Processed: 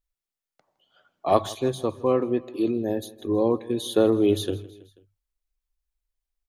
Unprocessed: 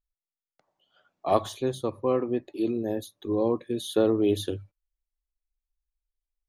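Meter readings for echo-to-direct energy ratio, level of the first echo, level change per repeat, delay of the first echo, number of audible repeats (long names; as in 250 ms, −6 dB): −19.0 dB, −20.5 dB, −4.5 dB, 162 ms, 3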